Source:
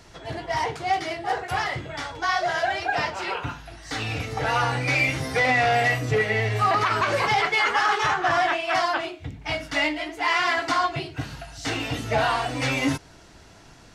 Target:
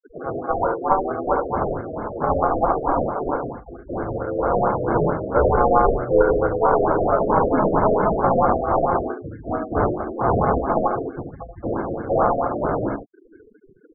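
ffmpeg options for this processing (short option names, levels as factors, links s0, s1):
-filter_complex "[0:a]equalizer=f=400:t=o:w=1.2:g=13.5,asplit=3[s0][s1][s2];[s1]asetrate=33038,aresample=44100,atempo=1.33484,volume=0.794[s3];[s2]asetrate=52444,aresample=44100,atempo=0.840896,volume=0.891[s4];[s0][s3][s4]amix=inputs=3:normalize=0,acrossover=split=520[s5][s6];[s5]acompressor=threshold=0.0355:ratio=6[s7];[s6]aeval=exprs='0.75*(cos(1*acos(clip(val(0)/0.75,-1,1)))-cos(1*PI/2))+0.168*(cos(2*acos(clip(val(0)/0.75,-1,1)))-cos(2*PI/2))':c=same[s8];[s7][s8]amix=inputs=2:normalize=0,afftfilt=real='re*gte(hypot(re,im),0.0562)':imag='im*gte(hypot(re,im),0.0562)':win_size=1024:overlap=0.75,acrusher=samples=23:mix=1:aa=0.000001,asplit=2[s9][s10];[s10]aecho=0:1:72:0.531[s11];[s9][s11]amix=inputs=2:normalize=0,afftfilt=real='re*lt(b*sr/1024,680*pow(2200/680,0.5+0.5*sin(2*PI*4.5*pts/sr)))':imag='im*lt(b*sr/1024,680*pow(2200/680,0.5+0.5*sin(2*PI*4.5*pts/sr)))':win_size=1024:overlap=0.75,volume=0.841"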